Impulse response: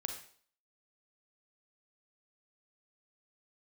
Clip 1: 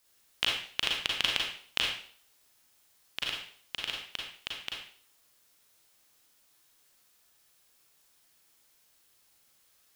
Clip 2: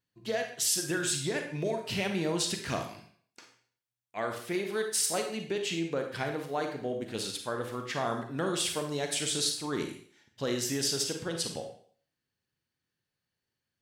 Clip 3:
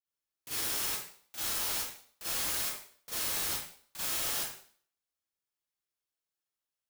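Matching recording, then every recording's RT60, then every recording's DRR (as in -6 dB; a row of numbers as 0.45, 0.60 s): 2; 0.50, 0.50, 0.50 s; -2.0, 4.0, -12.0 dB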